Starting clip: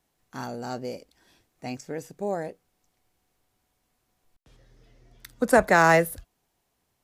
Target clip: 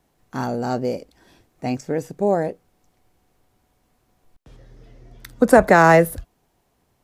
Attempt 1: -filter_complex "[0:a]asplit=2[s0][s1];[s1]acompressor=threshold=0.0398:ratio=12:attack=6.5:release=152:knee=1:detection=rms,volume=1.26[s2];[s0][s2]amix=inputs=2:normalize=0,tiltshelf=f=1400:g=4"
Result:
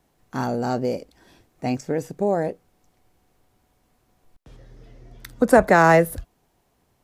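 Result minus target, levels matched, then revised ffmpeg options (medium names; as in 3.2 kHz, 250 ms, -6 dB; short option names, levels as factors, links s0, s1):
compression: peak gain reduction +8 dB
-filter_complex "[0:a]asplit=2[s0][s1];[s1]acompressor=threshold=0.112:ratio=12:attack=6.5:release=152:knee=1:detection=rms,volume=1.26[s2];[s0][s2]amix=inputs=2:normalize=0,tiltshelf=f=1400:g=4"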